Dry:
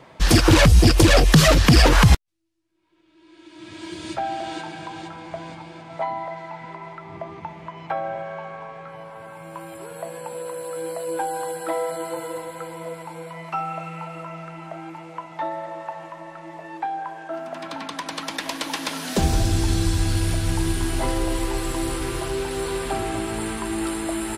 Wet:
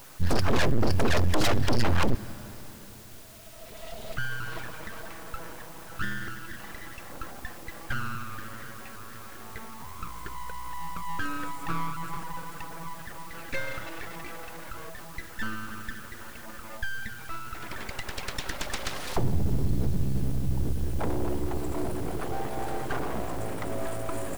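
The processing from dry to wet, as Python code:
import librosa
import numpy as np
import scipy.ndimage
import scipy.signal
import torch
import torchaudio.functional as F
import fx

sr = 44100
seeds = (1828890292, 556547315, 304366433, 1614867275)

p1 = fx.envelope_sharpen(x, sr, power=2.0)
p2 = np.abs(p1)
p3 = fx.quant_dither(p2, sr, seeds[0], bits=6, dither='triangular')
p4 = p2 + (p3 * librosa.db_to_amplitude(-11.0))
p5 = fx.rev_plate(p4, sr, seeds[1], rt60_s=4.8, hf_ratio=0.9, predelay_ms=0, drr_db=18.5)
p6 = np.clip(p5, -10.0 ** (-11.5 / 20.0), 10.0 ** (-11.5 / 20.0))
y = p6 * librosa.db_to_amplitude(-4.0)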